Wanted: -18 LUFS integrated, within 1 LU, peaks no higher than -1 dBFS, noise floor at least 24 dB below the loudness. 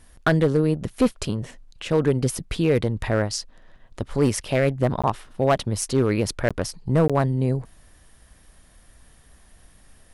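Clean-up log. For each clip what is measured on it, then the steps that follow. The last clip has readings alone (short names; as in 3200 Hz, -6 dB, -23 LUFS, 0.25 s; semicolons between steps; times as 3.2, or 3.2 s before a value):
clipped 0.6%; flat tops at -11.5 dBFS; dropouts 3; longest dropout 16 ms; loudness -23.0 LUFS; peak -11.5 dBFS; loudness target -18.0 LUFS
-> clip repair -11.5 dBFS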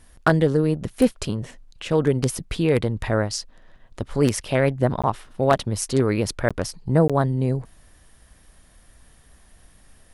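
clipped 0.0%; dropouts 3; longest dropout 16 ms
-> interpolate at 5.02/6.49/7.08, 16 ms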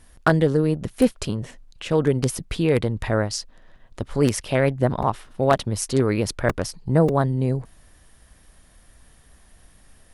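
dropouts 0; loudness -22.5 LUFS; peak -2.5 dBFS; loudness target -18.0 LUFS
-> gain +4.5 dB; limiter -1 dBFS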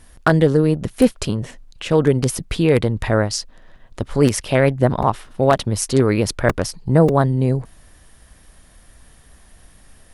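loudness -18.5 LUFS; peak -1.0 dBFS; noise floor -49 dBFS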